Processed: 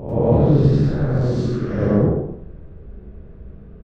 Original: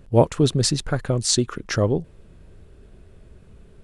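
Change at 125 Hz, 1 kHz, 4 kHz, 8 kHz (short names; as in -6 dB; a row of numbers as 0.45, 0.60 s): +6.5 dB, -0.5 dB, -17.5 dB, under -25 dB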